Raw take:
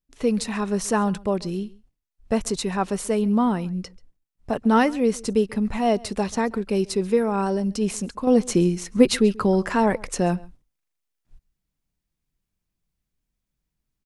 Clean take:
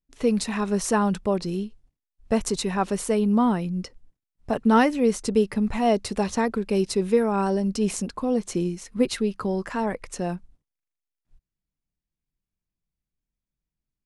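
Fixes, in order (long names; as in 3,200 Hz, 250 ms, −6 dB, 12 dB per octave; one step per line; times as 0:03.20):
echo removal 136 ms −23.5 dB
level correction −6.5 dB, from 0:08.27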